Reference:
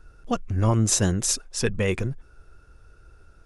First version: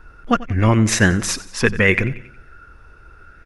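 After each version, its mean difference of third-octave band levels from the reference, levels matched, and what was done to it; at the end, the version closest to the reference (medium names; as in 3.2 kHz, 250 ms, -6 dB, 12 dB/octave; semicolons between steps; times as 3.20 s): 4.0 dB: ten-band graphic EQ 250 Hz +4 dB, 2 kHz +9 dB, 8 kHz -7 dB; feedback delay 91 ms, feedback 48%, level -17.5 dB; sweeping bell 0.68 Hz 980–2400 Hz +8 dB; trim +4.5 dB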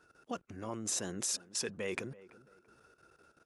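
5.5 dB: level held to a coarse grid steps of 17 dB; high-pass 250 Hz 12 dB/octave; on a send: tape echo 334 ms, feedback 39%, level -17 dB, low-pass 1.2 kHz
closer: first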